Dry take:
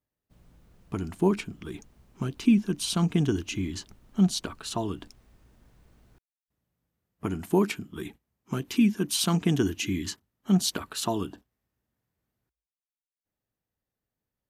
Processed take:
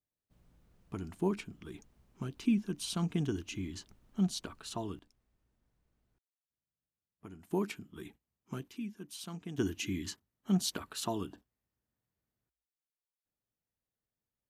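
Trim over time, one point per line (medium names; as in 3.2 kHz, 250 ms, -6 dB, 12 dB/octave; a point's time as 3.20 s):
-8.5 dB
from 4.99 s -19 dB
from 7.51 s -10 dB
from 8.68 s -19 dB
from 9.58 s -7 dB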